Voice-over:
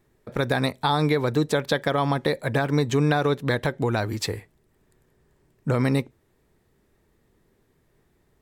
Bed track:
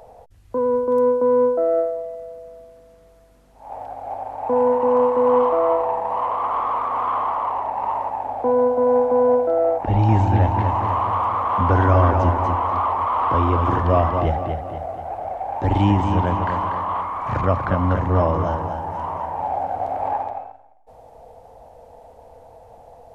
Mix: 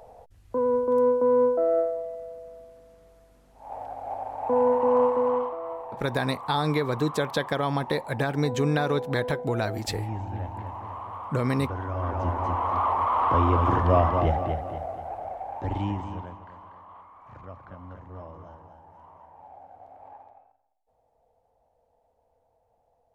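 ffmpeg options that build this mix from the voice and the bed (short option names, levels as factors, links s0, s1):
-filter_complex "[0:a]adelay=5650,volume=0.668[s0];[1:a]volume=2.99,afade=t=out:st=5.05:d=0.51:silence=0.237137,afade=t=in:st=11.95:d=0.98:silence=0.211349,afade=t=out:st=14.51:d=1.89:silence=0.0891251[s1];[s0][s1]amix=inputs=2:normalize=0"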